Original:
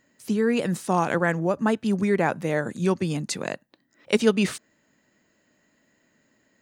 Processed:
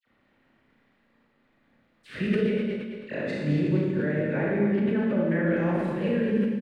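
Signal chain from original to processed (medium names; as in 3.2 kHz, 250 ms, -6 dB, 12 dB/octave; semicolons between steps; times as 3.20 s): reverse the whole clip; high-order bell 940 Hz -12 dB 1.1 oct; compression, threshold -26 dBFS, peak gain reduction 12 dB; word length cut 10-bit, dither none; distance through air 490 m; phase dispersion lows, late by 58 ms, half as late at 1.7 kHz; on a send: feedback delay 217 ms, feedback 39%, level -9 dB; on the sum: Schroeder reverb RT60 1.4 s, combs from 27 ms, DRR -4.5 dB; decay stretcher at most 48 dB/s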